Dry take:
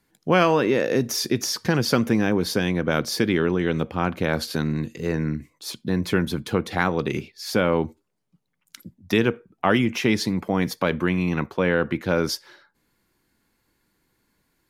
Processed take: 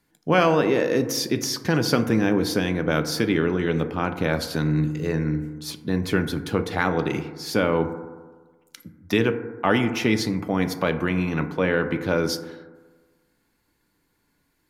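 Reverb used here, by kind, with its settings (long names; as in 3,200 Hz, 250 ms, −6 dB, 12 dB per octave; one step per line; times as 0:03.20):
feedback delay network reverb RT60 1.4 s, low-frequency decay 0.95×, high-frequency decay 0.25×, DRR 8 dB
level −1 dB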